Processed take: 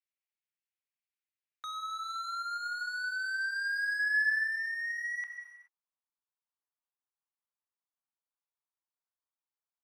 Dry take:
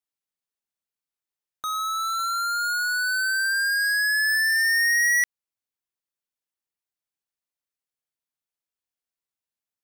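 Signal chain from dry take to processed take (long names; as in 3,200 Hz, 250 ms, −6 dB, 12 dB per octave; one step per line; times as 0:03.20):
reverb whose tail is shaped and stops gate 450 ms falling, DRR 7.5 dB
downward compressor 2 to 1, threshold −28 dBFS, peak gain reduction 7 dB
band-pass filter sweep 2,300 Hz → 1,000 Hz, 0:03.97–0:04.70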